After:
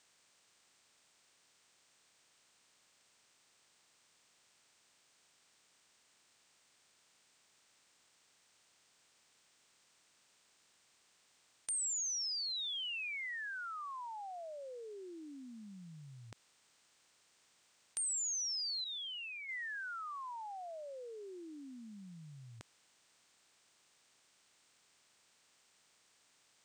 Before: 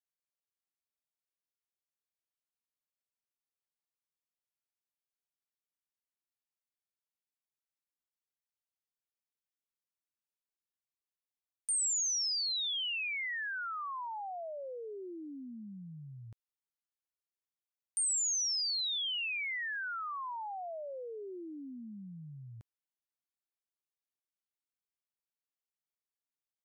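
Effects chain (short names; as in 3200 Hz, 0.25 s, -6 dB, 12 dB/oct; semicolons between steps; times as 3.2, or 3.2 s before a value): per-bin compression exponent 0.6; 18.84–19.49 expander -31 dBFS; gain -6 dB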